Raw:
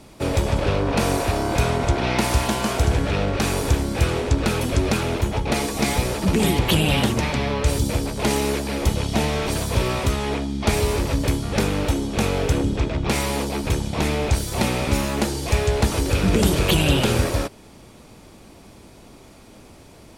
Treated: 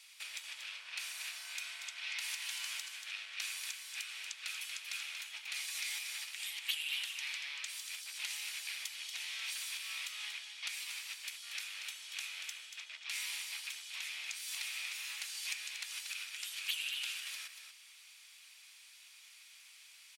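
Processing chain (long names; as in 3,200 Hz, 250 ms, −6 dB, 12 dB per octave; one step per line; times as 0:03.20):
downward compressor, threshold −27 dBFS, peak gain reduction 14 dB
four-pole ladder high-pass 1,900 Hz, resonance 30%
on a send: single-tap delay 235 ms −8 dB
on the sum: level +2 dB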